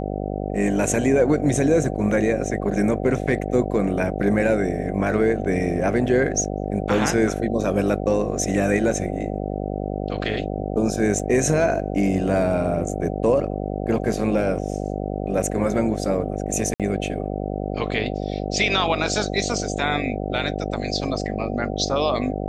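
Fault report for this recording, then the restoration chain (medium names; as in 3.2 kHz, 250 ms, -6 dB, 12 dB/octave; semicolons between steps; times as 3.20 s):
buzz 50 Hz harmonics 15 -27 dBFS
11.19 s: dropout 4.9 ms
16.74–16.80 s: dropout 57 ms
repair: de-hum 50 Hz, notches 15; interpolate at 11.19 s, 4.9 ms; interpolate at 16.74 s, 57 ms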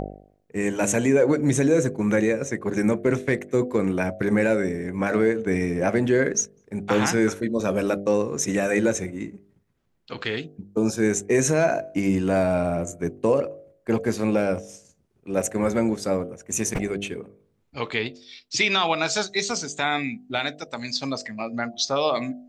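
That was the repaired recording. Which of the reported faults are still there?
nothing left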